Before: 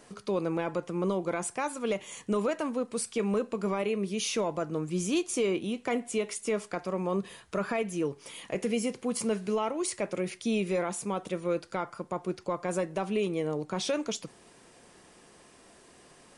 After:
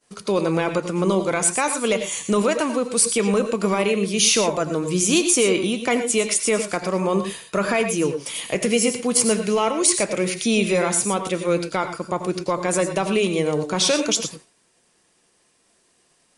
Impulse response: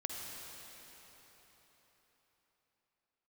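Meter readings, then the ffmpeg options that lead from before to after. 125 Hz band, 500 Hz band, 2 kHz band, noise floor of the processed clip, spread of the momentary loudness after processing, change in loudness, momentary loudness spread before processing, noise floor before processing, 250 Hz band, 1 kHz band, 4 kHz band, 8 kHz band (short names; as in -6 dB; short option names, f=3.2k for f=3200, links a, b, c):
+9.0 dB, +9.0 dB, +12.5 dB, -63 dBFS, 7 LU, +11.0 dB, 5 LU, -57 dBFS, +9.0 dB, +10.0 dB, +15.0 dB, +17.5 dB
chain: -filter_complex "[0:a]highshelf=f=2.3k:g=9,agate=range=-33dB:threshold=-39dB:ratio=3:detection=peak[a];[1:a]atrim=start_sample=2205,atrim=end_sample=3087,asetrate=24696,aresample=44100[b];[a][b]afir=irnorm=-1:irlink=0,volume=7.5dB"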